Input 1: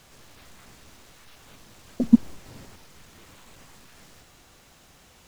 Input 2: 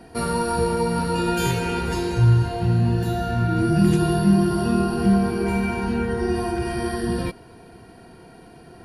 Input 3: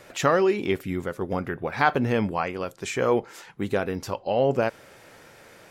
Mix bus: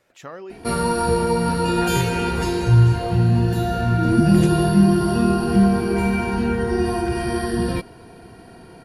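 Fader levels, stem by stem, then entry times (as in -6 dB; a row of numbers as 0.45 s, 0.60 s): -5.5 dB, +2.5 dB, -16.0 dB; 2.05 s, 0.50 s, 0.00 s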